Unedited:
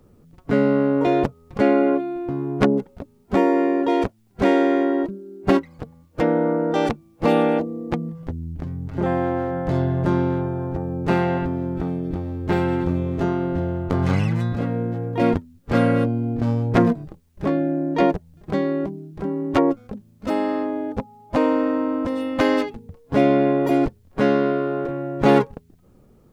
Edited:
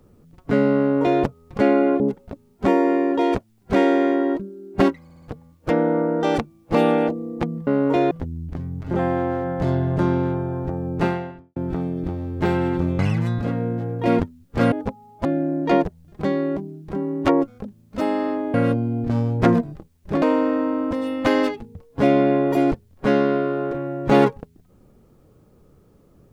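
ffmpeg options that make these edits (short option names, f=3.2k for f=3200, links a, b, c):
-filter_complex "[0:a]asplit=13[a][b][c][d][e][f][g][h][i][j][k][l][m];[a]atrim=end=2.002[n];[b]atrim=start=2.688:end=5.792[o];[c]atrim=start=5.728:end=5.792[p];[d]atrim=start=5.728:end=5.792[q];[e]atrim=start=5.728:end=8.182[r];[f]atrim=start=0.778:end=1.222[s];[g]atrim=start=8.178:end=11.63,asetpts=PTS-STARTPTS,afade=t=out:st=2.902:d=0.55:c=qua[t];[h]atrim=start=11.63:end=13.062,asetpts=PTS-STARTPTS,afade=t=in:d=0.004:c=hsin[u];[i]atrim=start=14.128:end=15.862[v];[j]atrim=start=20.828:end=21.362[w];[k]atrim=start=17.538:end=20.832[x];[l]atrim=start=15.858:end=17.542[y];[m]atrim=start=21.358[z];[n][o]acrossfade=d=0.004:c1=hsin:c2=hsin[aa];[aa][p]acrossfade=d=0.004:c1=hsin:c2=hsin[ab];[ab][q]acrossfade=d=0.004:c1=hsin:c2=hsin[ac];[ac][r]acrossfade=d=0.004:c1=hsin:c2=hsin[ad];[ad][s]acrossfade=d=0.004:c1=hsin:c2=hsin[ae];[t][u]concat=n=2:v=0:a=1[af];[ae][af]acrossfade=d=0.004:c1=hsin:c2=hsin[ag];[ag][v]acrossfade=d=0.004:c1=hsin:c2=hsin[ah];[ah][w]acrossfade=d=0.004:c1=hsin:c2=hsin[ai];[ai][x]acrossfade=d=0.004:c1=hsin:c2=hsin[aj];[aj][y]acrossfade=d=0.004:c1=hsin:c2=hsin[ak];[ak][z]acrossfade=d=0.004:c1=hsin:c2=hsin"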